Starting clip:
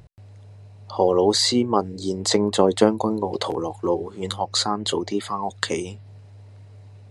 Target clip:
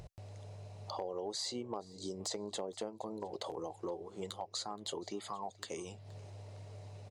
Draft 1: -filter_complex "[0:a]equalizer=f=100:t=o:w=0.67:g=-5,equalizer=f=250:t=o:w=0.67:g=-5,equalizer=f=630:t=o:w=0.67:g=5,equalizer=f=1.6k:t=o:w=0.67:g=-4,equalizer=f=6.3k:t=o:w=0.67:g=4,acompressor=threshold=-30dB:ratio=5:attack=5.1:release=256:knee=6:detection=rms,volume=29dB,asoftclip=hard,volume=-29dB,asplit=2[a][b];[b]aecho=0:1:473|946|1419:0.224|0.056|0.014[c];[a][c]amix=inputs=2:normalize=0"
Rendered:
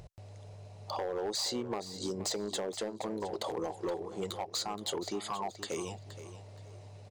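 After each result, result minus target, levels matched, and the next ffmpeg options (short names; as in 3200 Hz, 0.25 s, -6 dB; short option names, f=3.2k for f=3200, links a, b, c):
echo-to-direct +10 dB; compressor: peak gain reduction -6.5 dB
-filter_complex "[0:a]equalizer=f=100:t=o:w=0.67:g=-5,equalizer=f=250:t=o:w=0.67:g=-5,equalizer=f=630:t=o:w=0.67:g=5,equalizer=f=1.6k:t=o:w=0.67:g=-4,equalizer=f=6.3k:t=o:w=0.67:g=4,acompressor=threshold=-30dB:ratio=5:attack=5.1:release=256:knee=6:detection=rms,volume=29dB,asoftclip=hard,volume=-29dB,asplit=2[a][b];[b]aecho=0:1:473|946:0.0708|0.0177[c];[a][c]amix=inputs=2:normalize=0"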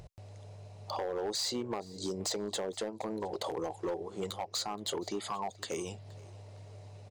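compressor: peak gain reduction -6.5 dB
-filter_complex "[0:a]equalizer=f=100:t=o:w=0.67:g=-5,equalizer=f=250:t=o:w=0.67:g=-5,equalizer=f=630:t=o:w=0.67:g=5,equalizer=f=1.6k:t=o:w=0.67:g=-4,equalizer=f=6.3k:t=o:w=0.67:g=4,acompressor=threshold=-38dB:ratio=5:attack=5.1:release=256:knee=6:detection=rms,volume=29dB,asoftclip=hard,volume=-29dB,asplit=2[a][b];[b]aecho=0:1:473|946:0.0708|0.0177[c];[a][c]amix=inputs=2:normalize=0"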